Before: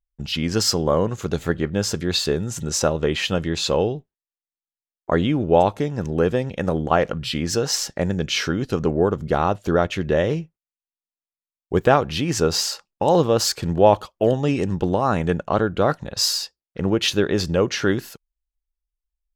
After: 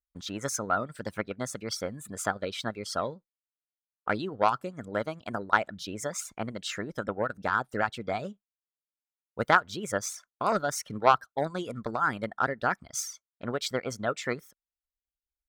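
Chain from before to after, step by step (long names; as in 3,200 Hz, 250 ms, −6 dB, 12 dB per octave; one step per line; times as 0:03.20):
harmonic generator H 3 −15 dB, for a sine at −2 dBFS
reverb reduction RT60 0.89 s
parametric band 1,100 Hz +13 dB 0.45 octaves
speed change +25%
level −6 dB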